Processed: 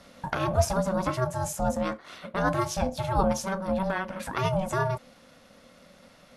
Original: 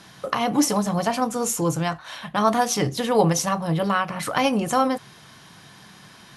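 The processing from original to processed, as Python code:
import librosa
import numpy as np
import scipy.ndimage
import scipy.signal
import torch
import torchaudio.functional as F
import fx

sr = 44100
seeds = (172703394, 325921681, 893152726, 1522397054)

y = fx.tilt_shelf(x, sr, db=3.5, hz=750.0)
y = y * np.sin(2.0 * np.pi * 380.0 * np.arange(len(y)) / sr)
y = fx.rider(y, sr, range_db=4, speed_s=2.0)
y = F.gain(torch.from_numpy(y), -4.0).numpy()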